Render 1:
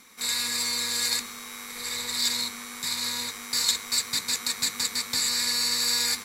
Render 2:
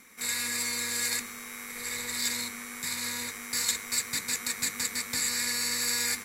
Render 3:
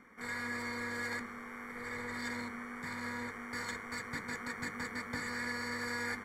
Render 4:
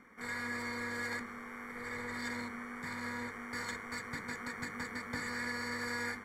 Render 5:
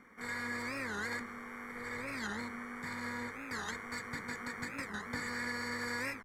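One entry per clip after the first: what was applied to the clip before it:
graphic EQ 1/2/4 kHz -5/+4/-9 dB
Savitzky-Golay filter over 41 samples; trim +1 dB
endings held to a fixed fall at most 110 dB/s
warped record 45 rpm, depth 250 cents

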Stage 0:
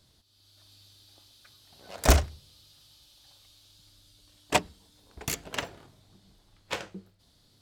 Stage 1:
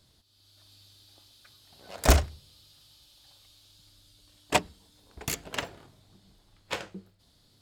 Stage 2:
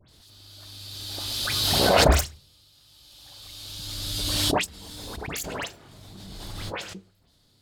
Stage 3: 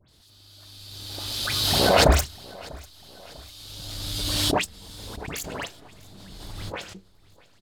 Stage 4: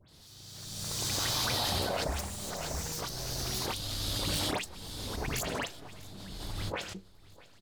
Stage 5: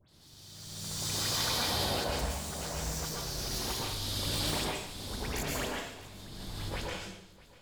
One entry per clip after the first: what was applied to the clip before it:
band-stop 5.9 kHz, Q 24
phase dispersion highs, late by 91 ms, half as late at 2.3 kHz; swell ahead of each attack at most 21 dB/s
in parallel at -5 dB: hysteresis with a dead band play -26.5 dBFS; on the sum: feedback delay 646 ms, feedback 50%, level -23 dB; trim -3 dB
compression 10:1, threshold -30 dBFS, peak gain reduction 18.5 dB; ever faster or slower copies 84 ms, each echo +4 st, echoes 3
reverberation RT60 0.75 s, pre-delay 108 ms, DRR -2.5 dB; trim -4.5 dB

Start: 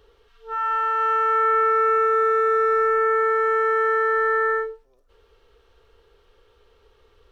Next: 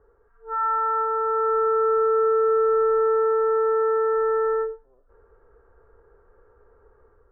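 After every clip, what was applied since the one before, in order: elliptic low-pass 1.6 kHz, stop band 60 dB; low-pass that closes with the level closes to 930 Hz, closed at -19 dBFS; level rider gain up to 5 dB; trim -2.5 dB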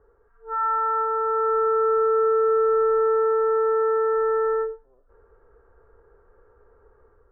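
no audible change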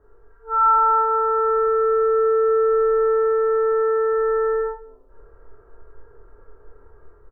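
doubling 26 ms -7.5 dB; reverberation RT60 0.55 s, pre-delay 3 ms, DRR -1.5 dB

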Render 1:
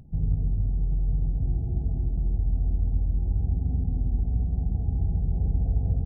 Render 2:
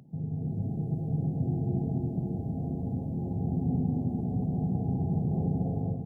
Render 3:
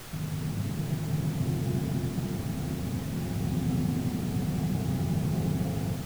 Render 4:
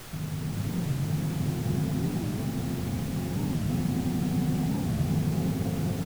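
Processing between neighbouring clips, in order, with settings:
high-pass 140 Hz 24 dB/octave; level rider gain up to 8.5 dB
added noise pink -43 dBFS
delay 527 ms -3.5 dB; warped record 45 rpm, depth 250 cents

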